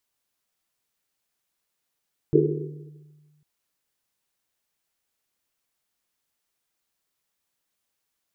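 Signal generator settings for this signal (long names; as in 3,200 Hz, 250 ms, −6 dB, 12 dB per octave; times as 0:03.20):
drum after Risset, pitch 150 Hz, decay 1.68 s, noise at 380 Hz, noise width 130 Hz, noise 65%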